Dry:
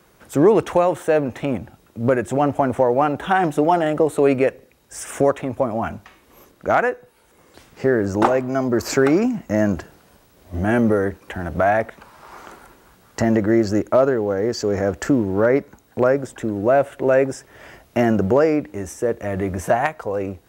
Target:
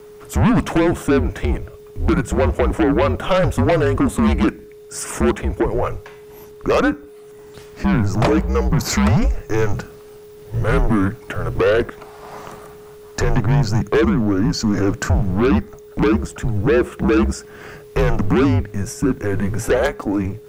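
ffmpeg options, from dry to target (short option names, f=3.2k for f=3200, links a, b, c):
-af "aeval=exprs='0.596*(cos(1*acos(clip(val(0)/0.596,-1,1)))-cos(1*PI/2))+0.188*(cos(5*acos(clip(val(0)/0.596,-1,1)))-cos(5*PI/2))':c=same,aeval=exprs='val(0)+0.0178*sin(2*PI*620*n/s)':c=same,afreqshift=-200,volume=-3dB"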